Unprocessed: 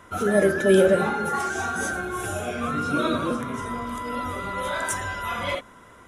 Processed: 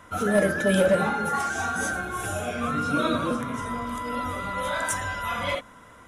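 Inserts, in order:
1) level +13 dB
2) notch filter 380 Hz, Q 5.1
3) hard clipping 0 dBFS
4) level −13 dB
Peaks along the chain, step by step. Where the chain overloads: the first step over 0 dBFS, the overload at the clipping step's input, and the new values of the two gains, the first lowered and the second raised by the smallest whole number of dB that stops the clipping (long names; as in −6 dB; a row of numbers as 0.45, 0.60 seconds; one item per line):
+6.5, +5.0, 0.0, −13.0 dBFS
step 1, 5.0 dB
step 1 +8 dB, step 4 −8 dB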